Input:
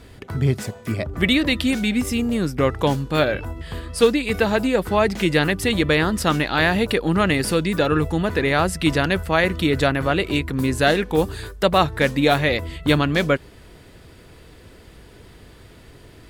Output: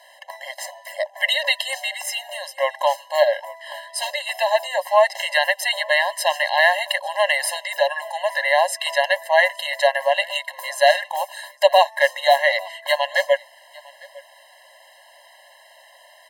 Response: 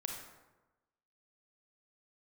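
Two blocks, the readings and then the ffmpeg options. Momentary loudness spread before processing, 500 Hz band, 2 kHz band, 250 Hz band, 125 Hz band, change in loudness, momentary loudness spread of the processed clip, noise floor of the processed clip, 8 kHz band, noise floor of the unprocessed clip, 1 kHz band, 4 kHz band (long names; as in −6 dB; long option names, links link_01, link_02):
5 LU, +1.0 dB, +3.0 dB, below −40 dB, below −40 dB, 0.0 dB, 12 LU, −50 dBFS, +2.5 dB, −46 dBFS, +3.5 dB, +2.0 dB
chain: -filter_complex "[0:a]asplit=2[link_01][link_02];[link_02]aecho=0:1:853:0.0668[link_03];[link_01][link_03]amix=inputs=2:normalize=0,afftfilt=real='re*eq(mod(floor(b*sr/1024/540),2),1)':imag='im*eq(mod(floor(b*sr/1024/540),2),1)':win_size=1024:overlap=0.75,volume=5.5dB"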